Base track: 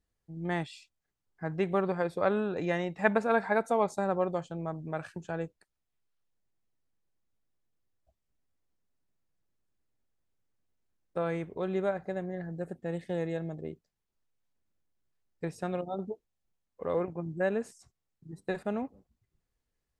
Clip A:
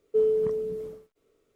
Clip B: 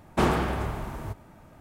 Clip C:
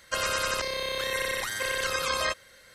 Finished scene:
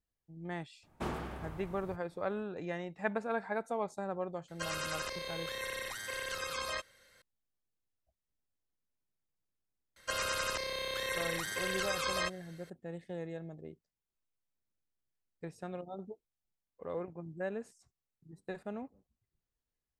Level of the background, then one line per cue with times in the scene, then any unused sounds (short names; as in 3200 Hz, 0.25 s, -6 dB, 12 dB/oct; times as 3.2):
base track -8.5 dB
0.83 add B -15 dB
4.48 add C -10 dB
9.96 add C -6.5 dB
not used: A